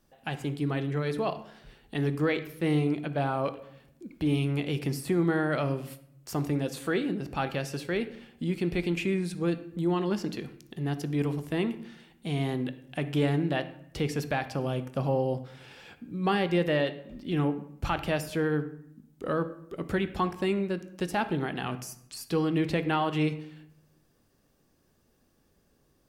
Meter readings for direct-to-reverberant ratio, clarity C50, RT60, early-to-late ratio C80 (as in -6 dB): 10.5 dB, 13.0 dB, 0.70 s, 15.5 dB